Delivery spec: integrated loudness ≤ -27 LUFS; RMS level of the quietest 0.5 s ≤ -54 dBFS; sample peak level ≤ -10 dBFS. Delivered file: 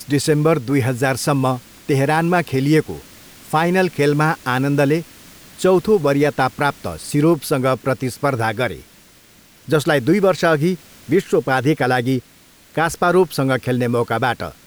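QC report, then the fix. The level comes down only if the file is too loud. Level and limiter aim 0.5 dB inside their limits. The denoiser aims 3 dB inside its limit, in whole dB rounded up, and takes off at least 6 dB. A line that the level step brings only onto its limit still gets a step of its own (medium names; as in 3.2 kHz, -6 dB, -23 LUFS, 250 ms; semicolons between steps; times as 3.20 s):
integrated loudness -18.0 LUFS: fail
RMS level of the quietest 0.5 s -49 dBFS: fail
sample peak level -4.5 dBFS: fail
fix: trim -9.5 dB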